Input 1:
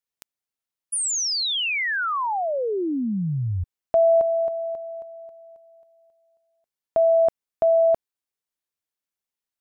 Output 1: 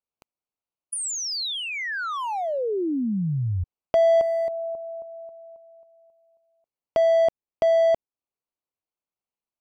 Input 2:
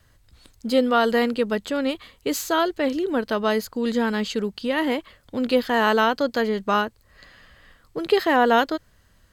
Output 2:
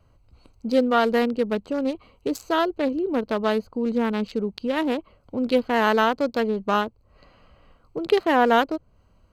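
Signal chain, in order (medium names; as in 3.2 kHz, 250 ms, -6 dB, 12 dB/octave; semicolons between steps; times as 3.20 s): local Wiener filter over 25 samples; tape noise reduction on one side only encoder only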